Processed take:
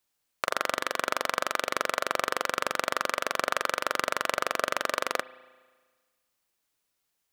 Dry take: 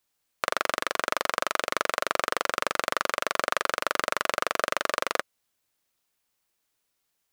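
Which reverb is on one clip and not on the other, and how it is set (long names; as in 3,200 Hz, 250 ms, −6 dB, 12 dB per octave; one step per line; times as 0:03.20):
spring reverb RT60 1.5 s, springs 35 ms, chirp 70 ms, DRR 17 dB
level −1.5 dB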